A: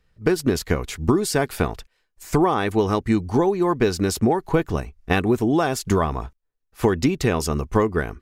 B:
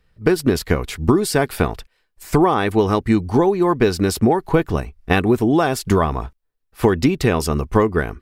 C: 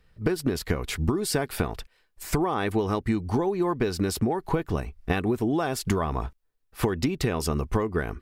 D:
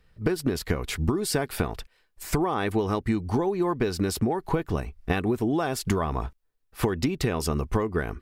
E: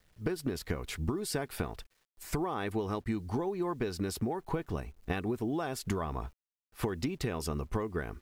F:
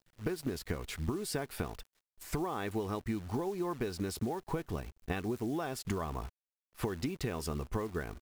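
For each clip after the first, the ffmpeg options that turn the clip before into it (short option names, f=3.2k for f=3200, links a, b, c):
-af "equalizer=f=6.6k:w=3:g=-5.5,volume=3.5dB"
-af "acompressor=threshold=-22dB:ratio=6"
-af anull
-af "acrusher=bits=9:mix=0:aa=0.000001,volume=-8dB"
-af "acrusher=bits=9:dc=4:mix=0:aa=0.000001,volume=-2dB"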